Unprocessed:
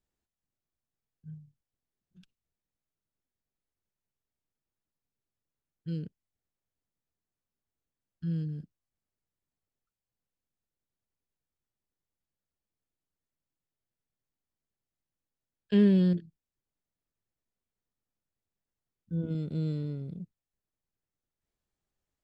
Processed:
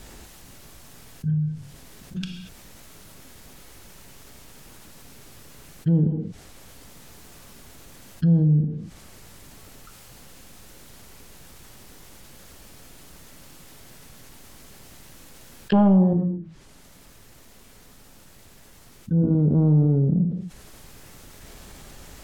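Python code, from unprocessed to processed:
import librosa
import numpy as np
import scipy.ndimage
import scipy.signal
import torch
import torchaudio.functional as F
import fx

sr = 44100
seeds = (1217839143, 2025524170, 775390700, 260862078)

y = fx.env_lowpass_down(x, sr, base_hz=580.0, full_db=-34.5)
y = fx.rider(y, sr, range_db=4, speed_s=0.5)
y = fx.fold_sine(y, sr, drive_db=6, ceiling_db=-14.0)
y = fx.rev_gated(y, sr, seeds[0], gate_ms=260, shape='falling', drr_db=7.5)
y = fx.env_flatten(y, sr, amount_pct=50)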